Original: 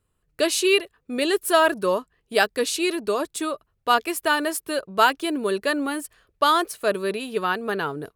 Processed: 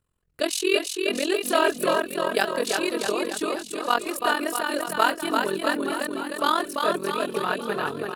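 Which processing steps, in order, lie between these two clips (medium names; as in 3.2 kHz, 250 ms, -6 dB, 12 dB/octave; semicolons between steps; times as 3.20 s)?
AM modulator 43 Hz, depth 80%; bouncing-ball echo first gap 340 ms, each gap 0.9×, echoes 5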